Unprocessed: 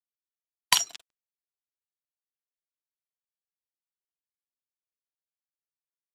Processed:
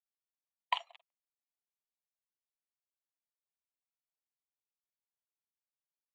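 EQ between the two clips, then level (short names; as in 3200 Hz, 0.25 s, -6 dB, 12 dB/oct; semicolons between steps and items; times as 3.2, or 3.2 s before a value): brick-wall FIR high-pass 500 Hz; tape spacing loss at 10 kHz 42 dB; fixed phaser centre 1500 Hz, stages 6; 0.0 dB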